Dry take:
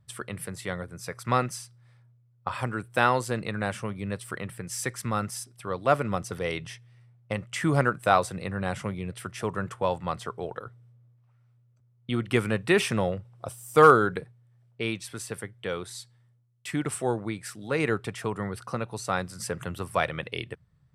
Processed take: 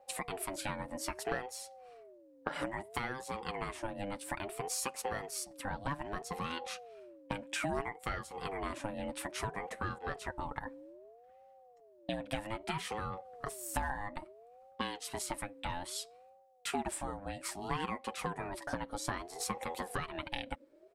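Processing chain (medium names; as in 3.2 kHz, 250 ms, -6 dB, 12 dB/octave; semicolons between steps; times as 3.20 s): compression 10:1, threshold -35 dBFS, peak gain reduction 24.5 dB; comb 7 ms, depth 53%; ring modulator with a swept carrier 530 Hz, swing 25%, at 0.61 Hz; trim +3 dB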